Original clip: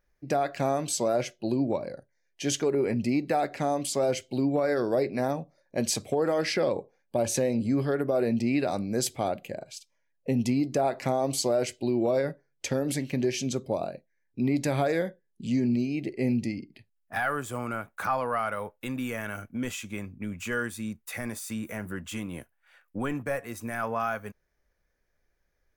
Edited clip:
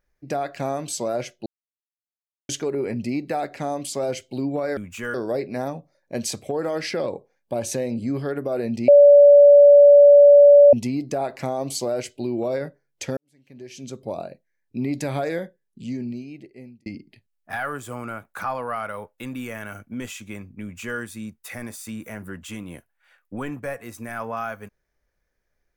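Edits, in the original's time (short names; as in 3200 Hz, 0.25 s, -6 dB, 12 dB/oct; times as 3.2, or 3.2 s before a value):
1.46–2.49 mute
8.51–10.36 bleep 575 Hz -6.5 dBFS
12.8–13.81 fade in quadratic
15.04–16.49 fade out
20.25–20.62 copy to 4.77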